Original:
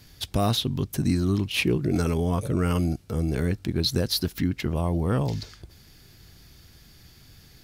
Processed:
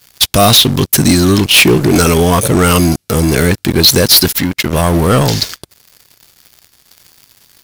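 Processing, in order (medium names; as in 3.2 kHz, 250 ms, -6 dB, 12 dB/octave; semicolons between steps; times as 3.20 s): tilt EQ +2.5 dB/octave; 4.30–4.73 s: compression 3:1, threshold -33 dBFS, peak gain reduction 6.5 dB; waveshaping leveller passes 5; trim +3 dB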